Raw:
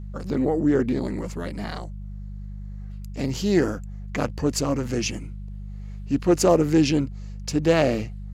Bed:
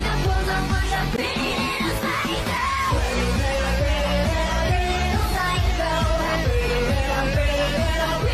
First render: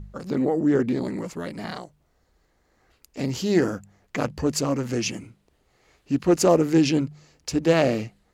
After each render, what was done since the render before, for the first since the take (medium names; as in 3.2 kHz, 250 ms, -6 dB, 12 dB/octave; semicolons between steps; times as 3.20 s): de-hum 50 Hz, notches 4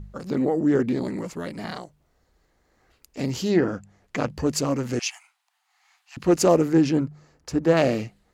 3.48–4.27 s: low-pass that closes with the level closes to 2.6 kHz, closed at -16 dBFS; 4.99–6.17 s: steep high-pass 730 Hz 96 dB/octave; 6.68–7.77 s: resonant high shelf 2 kHz -6.5 dB, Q 1.5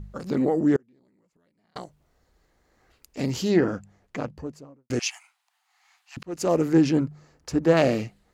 0.76–1.76 s: inverted gate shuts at -30 dBFS, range -36 dB; 3.67–4.90 s: studio fade out; 6.23–6.72 s: fade in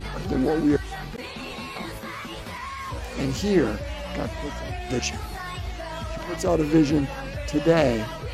add bed -11.5 dB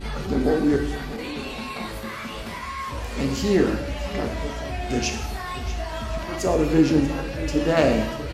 delay 640 ms -15 dB; gated-style reverb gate 270 ms falling, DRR 3.5 dB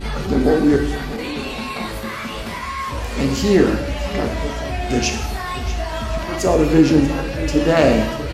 trim +5.5 dB; peak limiter -2 dBFS, peak gain reduction 2.5 dB